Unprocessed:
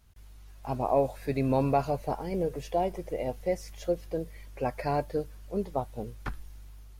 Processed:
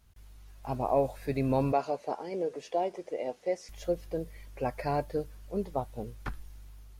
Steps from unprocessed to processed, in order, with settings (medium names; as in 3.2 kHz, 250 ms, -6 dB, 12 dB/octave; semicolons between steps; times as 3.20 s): 1.72–3.69 s: Chebyshev band-pass 330–6800 Hz, order 2; trim -1.5 dB